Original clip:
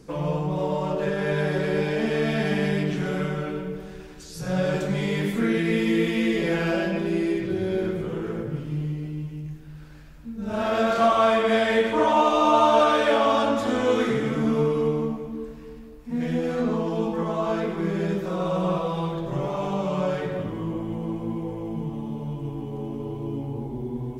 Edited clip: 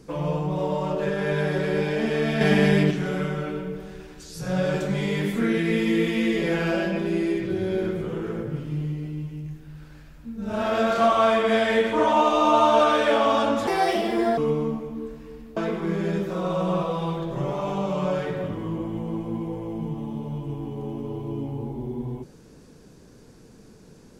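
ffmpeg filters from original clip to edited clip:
-filter_complex "[0:a]asplit=6[s0][s1][s2][s3][s4][s5];[s0]atrim=end=2.412[s6];[s1]atrim=start=2.408:end=2.912,asetpts=PTS-STARTPTS,volume=1.88[s7];[s2]atrim=start=2.908:end=13.674[s8];[s3]atrim=start=13.67:end=14.75,asetpts=PTS-STARTPTS,asetrate=67473,aresample=44100,atrim=end_sample=31129,asetpts=PTS-STARTPTS[s9];[s4]atrim=start=14.746:end=15.942[s10];[s5]atrim=start=17.518[s11];[s6][s7]acrossfade=d=0.004:c1=hsin:c2=hsin[s12];[s12][s8]acrossfade=d=0.004:c1=hsin:c2=hsin[s13];[s13][s9]acrossfade=d=0.004:c1=hsin:c2=hsin[s14];[s14][s10]acrossfade=d=0.004:c1=hsin:c2=hsin[s15];[s15][s11]acrossfade=d=0.004:c1=hsin:c2=hsin"

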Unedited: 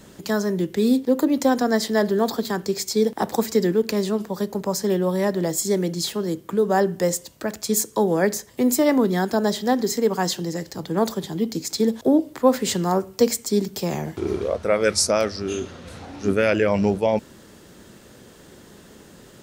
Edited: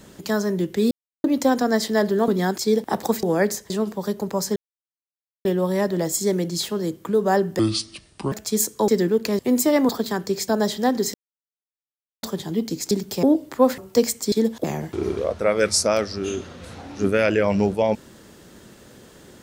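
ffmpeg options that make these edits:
-filter_complex "[0:a]asplit=21[s0][s1][s2][s3][s4][s5][s6][s7][s8][s9][s10][s11][s12][s13][s14][s15][s16][s17][s18][s19][s20];[s0]atrim=end=0.91,asetpts=PTS-STARTPTS,afade=t=out:st=0.906:d=0.004:c=hsin[s21];[s1]atrim=start=0.91:end=1.24,asetpts=PTS-STARTPTS,volume=0[s22];[s2]atrim=start=1.24:end=2.282,asetpts=PTS-STARTPTS,afade=t=in:d=0.004:c=hsin[s23];[s3]atrim=start=9.018:end=9.322[s24];[s4]atrim=start=2.868:end=3.522[s25];[s5]atrim=start=8.048:end=8.522[s26];[s6]atrim=start=4.028:end=4.89,asetpts=PTS-STARTPTS,afade=t=out:st=0.858:d=0.004:c=hsin,apad=pad_dur=0.89[s27];[s7]atrim=start=4.89:end=7.034,asetpts=PTS-STARTPTS,afade=t=in:d=0.004:c=hsin[s28];[s8]atrim=start=7.03:end=7.49,asetpts=PTS-STARTPTS,asetrate=27783,aresample=44100[s29];[s9]atrim=start=7.486:end=8.052[s30];[s10]atrim=start=3.518:end=4.032[s31];[s11]atrim=start=8.518:end=9.022[s32];[s12]atrim=start=2.278:end=2.872[s33];[s13]atrim=start=9.318:end=9.98,asetpts=PTS-STARTPTS,afade=t=out:st=0.658:d=0.004:c=hsin[s34];[s14]atrim=start=9.98:end=11.07,asetpts=PTS-STARTPTS,volume=0[s35];[s15]atrim=start=11.07:end=11.752,asetpts=PTS-STARTPTS,afade=t=in:d=0.004:c=hsin[s36];[s16]atrim=start=13.558:end=13.882[s37];[s17]atrim=start=12.068:end=12.622[s38];[s18]atrim=start=13.018:end=13.562[s39];[s19]atrim=start=11.748:end=12.072[s40];[s20]atrim=start=13.878[s41];[s21][s22][s23]concat=n=3:v=0:a=1[s42];[s42][s24]acrossfade=d=0.004:c1=hsin:c2=hsin[s43];[s43][s25]acrossfade=d=0.004:c1=hsin:c2=hsin[s44];[s44][s26]acrossfade=d=0.004:c1=hsin:c2=hsin[s45];[s27][s28]concat=n=2:v=0:a=1[s46];[s45][s46]acrossfade=d=0.004:c1=hsin:c2=hsin[s47];[s47][s29]acrossfade=d=0.004:c1=hsin:c2=hsin[s48];[s48][s30]acrossfade=d=0.004:c1=hsin:c2=hsin[s49];[s49][s31]acrossfade=d=0.004:c1=hsin:c2=hsin[s50];[s50][s32]acrossfade=d=0.004:c1=hsin:c2=hsin[s51];[s51][s33]acrossfade=d=0.004:c1=hsin:c2=hsin[s52];[s34][s35][s36]concat=n=3:v=0:a=1[s53];[s52][s53]acrossfade=d=0.004:c1=hsin:c2=hsin[s54];[s54][s37]acrossfade=d=0.004:c1=hsin:c2=hsin[s55];[s55][s38]acrossfade=d=0.004:c1=hsin:c2=hsin[s56];[s56][s39]acrossfade=d=0.004:c1=hsin:c2=hsin[s57];[s57][s40]acrossfade=d=0.004:c1=hsin:c2=hsin[s58];[s58][s41]acrossfade=d=0.004:c1=hsin:c2=hsin"

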